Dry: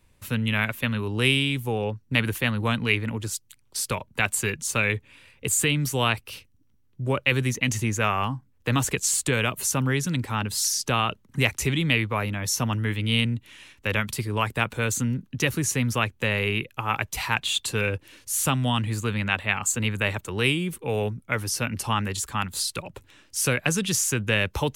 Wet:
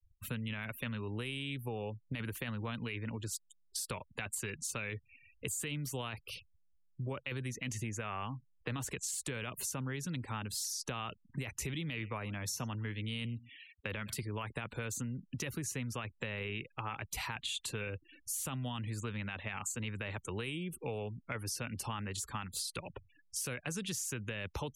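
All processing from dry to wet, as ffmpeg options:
-filter_complex "[0:a]asettb=1/sr,asplit=3[a][b][c];[a]atrim=end=11.744[d];[b]atrim=start=11.74:end=14.23,asetpts=PTS-STARTPTS,afade=t=in:d=0.004:c=qsin,afade=t=out:st=2.486:d=0.004:c=qsin,highpass=57,aecho=1:1:111:0.0668,atrim=end_sample=109809[e];[c]atrim=start=14.226[f];[d][e]acrossfade=d=0.004:c1=hsin:c2=qsin[g];[g][f]acrossfade=d=0.004:c1=qsin:c2=hsin,afftfilt=real='re*gte(hypot(re,im),0.00794)':imag='im*gte(hypot(re,im),0.00794)':win_size=1024:overlap=0.75,alimiter=limit=-15.5dB:level=0:latency=1:release=13,acompressor=threshold=-31dB:ratio=6,volume=-5dB"

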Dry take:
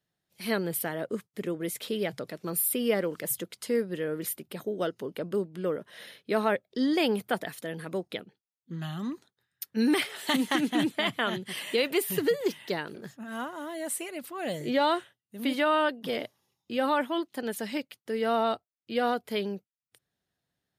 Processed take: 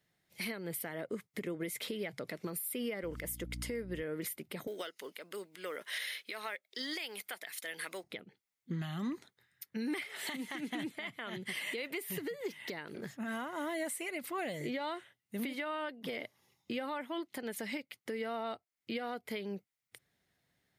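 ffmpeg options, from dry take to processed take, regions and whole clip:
-filter_complex "[0:a]asettb=1/sr,asplit=3[a][b][c];[a]atrim=end=3.034[d];[b]atrim=start=3.03:end=4.03,asetpts=PTS-STARTPTS,afade=t=in:d=0.004:c=qsin,afade=t=out:st=0.996:d=0.004:c=qsin,bandreject=f=4.1k:w=14,aeval=exprs='val(0)+0.00891*(sin(2*PI*60*n/s)+sin(2*PI*2*60*n/s)/2+sin(2*PI*3*60*n/s)/3+sin(2*PI*4*60*n/s)/4+sin(2*PI*5*60*n/s)/5)':c=same[e];[c]atrim=start=4.026[f];[d][e]acrossfade=d=0.004:c1=hsin:c2=qsin[g];[g][f]acrossfade=d=0.004:c1=qsin:c2=hsin,asettb=1/sr,asplit=3[h][i][j];[h]atrim=end=4.674[k];[i]atrim=start=4.67:end=8.04,asetpts=PTS-STARTPTS,afade=t=in:d=0.004:c=qsin,afade=t=out:st=3.366:d=0.004:c=qsin,highpass=310,tiltshelf=f=1.1k:g=-9.5,acrusher=bits=7:mode=log:mix=0:aa=0.000001[l];[j]atrim=start=8.036[m];[k][l]acrossfade=d=0.004:c1=hsin:c2=qsin[n];[n][m]acrossfade=d=0.004:c1=qsin:c2=hsin,equalizer=f=2.1k:t=o:w=0.28:g=9.5,acompressor=threshold=-37dB:ratio=4,alimiter=level_in=9dB:limit=-24dB:level=0:latency=1:release=335,volume=-9dB,volume=4.5dB"

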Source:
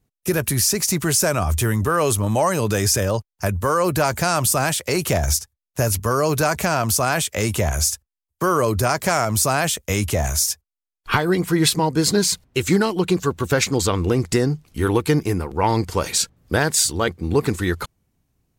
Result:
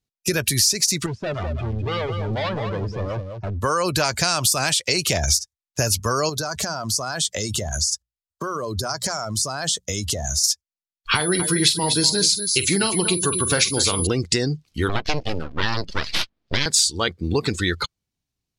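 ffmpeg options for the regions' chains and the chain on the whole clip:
-filter_complex "[0:a]asettb=1/sr,asplit=3[a][b][c];[a]atrim=end=1.064[d];[b]atrim=start=1.06:end=3.61,asetpts=PTS-STARTPTS,afade=t=in:d=0.004:c=qsin,afade=t=out:st=2.546:d=0.004:c=qsin,lowpass=1.1k,asoftclip=type=hard:threshold=-25dB,aecho=1:1:204:0.531,atrim=end_sample=112455[e];[c]atrim=start=3.606[f];[d][e]acrossfade=d=0.004:c1=hsin:c2=qsin[g];[g][f]acrossfade=d=0.004:c1=qsin:c2=hsin,asettb=1/sr,asplit=3[h][i][j];[h]atrim=end=6.294[k];[i]atrim=start=6.29:end=10.44,asetpts=PTS-STARTPTS,afade=t=in:d=0.004:c=qsin,afade=t=out:st=4.146:d=0.004:c=qsin,equalizer=f=2.4k:w=2.7:g=-8.5,bandreject=f=60:t=h:w=6,bandreject=f=120:t=h:w=6,bandreject=f=180:t=h:w=6,acompressor=threshold=-23dB:ratio=10:attack=3.2:release=140:knee=1:detection=peak[l];[j]atrim=start=10.436[m];[k][l]acrossfade=d=0.004:c1=hsin:c2=qsin[n];[n][m]acrossfade=d=0.004:c1=qsin:c2=hsin,asettb=1/sr,asplit=3[o][p][q];[o]atrim=end=11.154[r];[p]atrim=start=11.15:end=14.07,asetpts=PTS-STARTPTS,afade=t=in:d=0.004:c=qsin,afade=t=out:st=2.916:d=0.004:c=qsin,aecho=1:1:46|243:0.282|0.282,atrim=end_sample=128772,aeval=exprs='val(0)+0.0562*sin(2*PI*10000*n/s)':c=same[s];[q]atrim=start=14.066[t];[r][s]acrossfade=d=0.004:c1=hsin:c2=qsin[u];[u][t]acrossfade=d=0.004:c1=qsin:c2=hsin,asettb=1/sr,asplit=3[v][w][x];[v]atrim=end=14.894[y];[w]atrim=start=14.89:end=16.66,asetpts=PTS-STARTPTS,afade=t=in:d=0.004:c=qsin,afade=t=out:st=1.766:d=0.004:c=qsin,highpass=61,aeval=exprs='abs(val(0))':c=same,adynamicsmooth=sensitivity=7.5:basefreq=4.4k[z];[x]atrim=start=16.656[aa];[y][z]acrossfade=d=0.004:c1=hsin:c2=qsin[ab];[ab][aa]acrossfade=d=0.004:c1=qsin:c2=hsin,equalizer=f=4.4k:t=o:w=2:g=13.5,afftdn=nr=16:nf=-28,acompressor=threshold=-18dB:ratio=3"

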